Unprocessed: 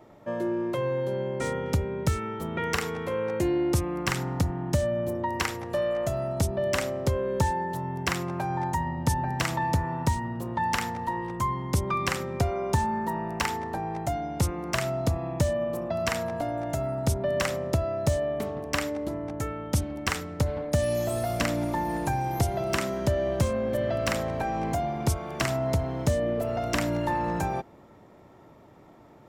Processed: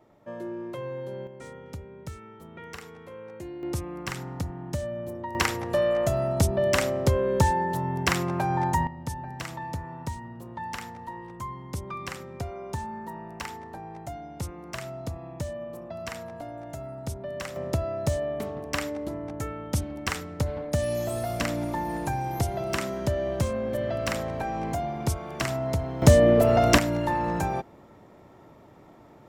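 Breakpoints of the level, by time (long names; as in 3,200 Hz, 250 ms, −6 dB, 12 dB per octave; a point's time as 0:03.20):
−7 dB
from 0:01.27 −13.5 dB
from 0:03.63 −6 dB
from 0:05.35 +3.5 dB
from 0:08.87 −8.5 dB
from 0:17.56 −1.5 dB
from 0:26.02 +9.5 dB
from 0:26.78 +1 dB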